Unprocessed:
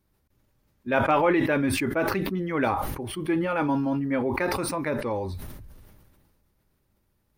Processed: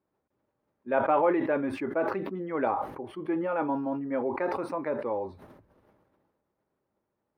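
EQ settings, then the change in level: high-pass 610 Hz 12 dB/octave; tilt EQ -4.5 dB/octave; treble shelf 2 kHz -11 dB; 0.0 dB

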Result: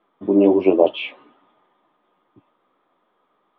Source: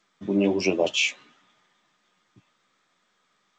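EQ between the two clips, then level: elliptic low-pass 3.4 kHz, stop band 60 dB; bass shelf 210 Hz +7 dB; high-order bell 550 Hz +13.5 dB 2.5 oct; -5.0 dB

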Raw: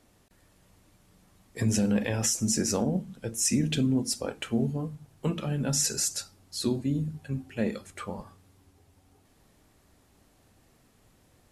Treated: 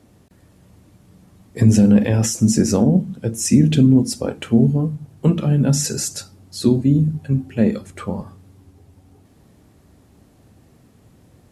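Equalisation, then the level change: high-pass 72 Hz; bass shelf 490 Hz +12 dB; +3.5 dB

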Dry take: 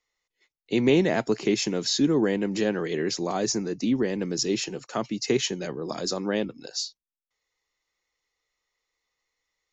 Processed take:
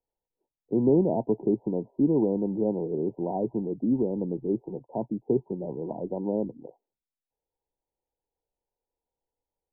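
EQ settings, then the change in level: brick-wall FIR low-pass 1 kHz; distance through air 450 m; 0.0 dB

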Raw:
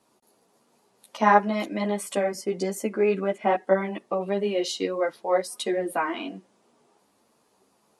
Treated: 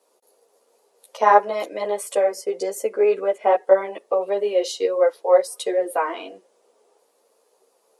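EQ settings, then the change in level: treble shelf 4.7 kHz +8 dB; dynamic bell 1 kHz, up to +5 dB, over -35 dBFS, Q 1.4; resonant high-pass 480 Hz, resonance Q 4.8; -3.5 dB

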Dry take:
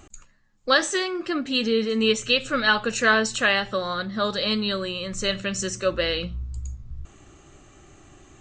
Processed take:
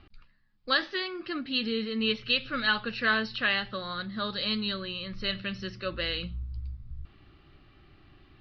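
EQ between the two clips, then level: steep low-pass 5 kHz 96 dB/octave; peaking EQ 580 Hz -8 dB 1.8 oct; -4.0 dB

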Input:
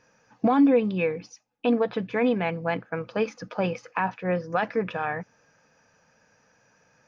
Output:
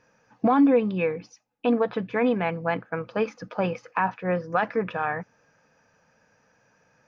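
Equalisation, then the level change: treble shelf 4.2 kHz -6.5 dB; dynamic bell 1.2 kHz, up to +4 dB, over -38 dBFS, Q 1.3; 0.0 dB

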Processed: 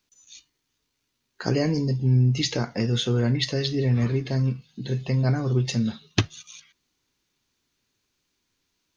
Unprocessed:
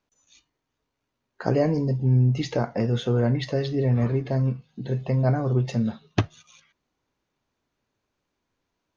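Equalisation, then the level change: FFT filter 370 Hz 0 dB, 620 Hz -7 dB, 4.4 kHz +11 dB; 0.0 dB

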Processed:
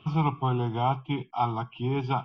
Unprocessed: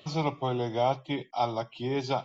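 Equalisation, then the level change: distance through air 410 m; peaking EQ 280 Hz -3.5 dB 0.7 oct; static phaser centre 2.8 kHz, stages 8; +8.5 dB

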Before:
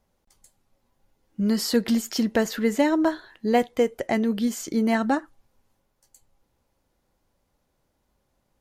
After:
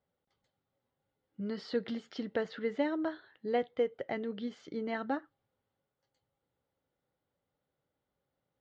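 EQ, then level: cabinet simulation 130–3400 Hz, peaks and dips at 220 Hz -10 dB, 340 Hz -6 dB, 670 Hz -5 dB, 1 kHz -9 dB, 1.7 kHz -4 dB, 2.5 kHz -9 dB; -6.5 dB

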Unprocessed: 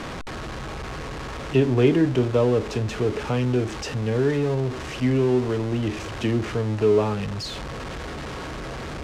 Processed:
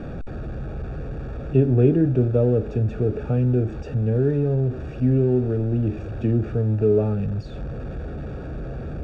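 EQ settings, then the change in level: boxcar filter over 43 samples; peaking EQ 320 Hz -5 dB 1.4 oct; +6.0 dB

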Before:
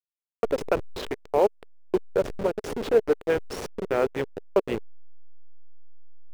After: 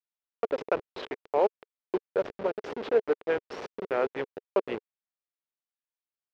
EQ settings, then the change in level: high-pass 500 Hz 6 dB/octave; distance through air 210 m; 0.0 dB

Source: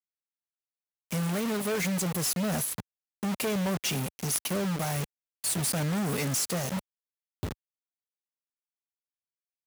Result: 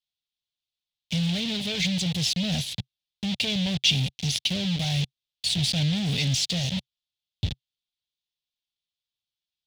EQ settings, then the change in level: FFT filter 130 Hz 0 dB, 380 Hz -17 dB, 750 Hz -12 dB, 1.2 kHz -25 dB, 3.5 kHz +9 dB, 12 kHz -24 dB; +8.5 dB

